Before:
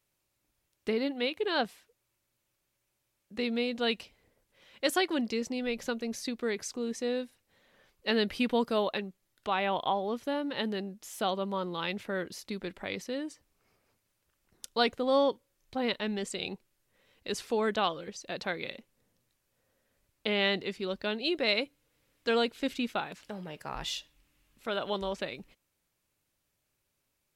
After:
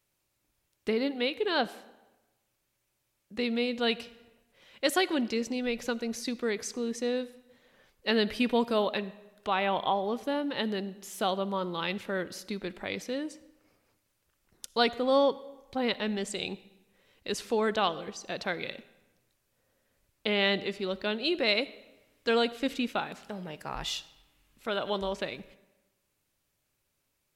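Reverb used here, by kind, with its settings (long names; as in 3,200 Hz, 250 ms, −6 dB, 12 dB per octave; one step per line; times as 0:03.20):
comb and all-pass reverb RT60 1.1 s, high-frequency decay 0.75×, pre-delay 20 ms, DRR 17.5 dB
level +1.5 dB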